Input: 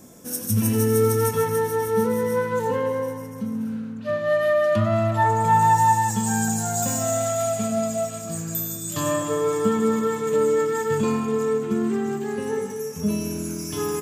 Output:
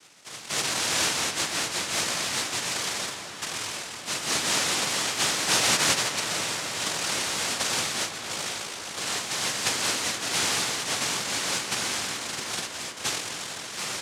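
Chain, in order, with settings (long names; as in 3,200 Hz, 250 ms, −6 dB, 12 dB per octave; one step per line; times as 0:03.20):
0:06.80–0:08.95: spectral tilt −2 dB per octave
cochlear-implant simulation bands 1
feedback echo with a low-pass in the loop 255 ms, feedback 83%, low-pass 4,100 Hz, level −11.5 dB
level −6.5 dB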